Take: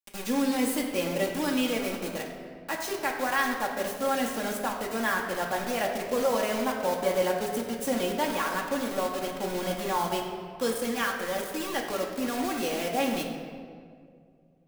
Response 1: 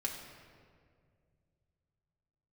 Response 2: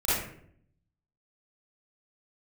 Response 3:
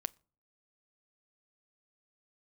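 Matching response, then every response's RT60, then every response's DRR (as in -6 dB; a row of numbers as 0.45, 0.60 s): 1; 2.1 s, 0.65 s, not exponential; -1.5, -13.5, 15.5 dB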